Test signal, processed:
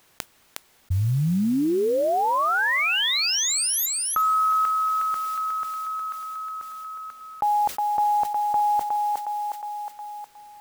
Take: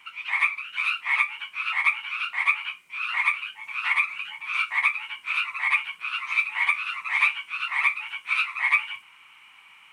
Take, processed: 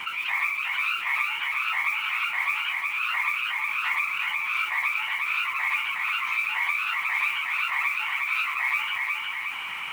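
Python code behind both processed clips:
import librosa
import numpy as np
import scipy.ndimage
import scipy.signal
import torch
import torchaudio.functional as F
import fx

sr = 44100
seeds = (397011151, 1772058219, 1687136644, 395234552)

p1 = fx.high_shelf(x, sr, hz=3700.0, db=-8.5)
p2 = fx.mod_noise(p1, sr, seeds[0], snr_db=25)
p3 = p2 + fx.echo_thinned(p2, sr, ms=362, feedback_pct=25, hz=520.0, wet_db=-8.5, dry=0)
p4 = fx.env_flatten(p3, sr, amount_pct=70)
y = p4 * 10.0 ** (-5.0 / 20.0)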